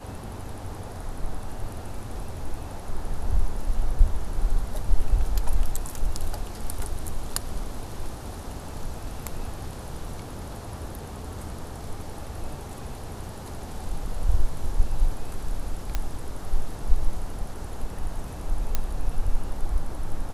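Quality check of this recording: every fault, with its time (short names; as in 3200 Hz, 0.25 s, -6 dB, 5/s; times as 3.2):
15.95 pop -12 dBFS
18.75 pop -9 dBFS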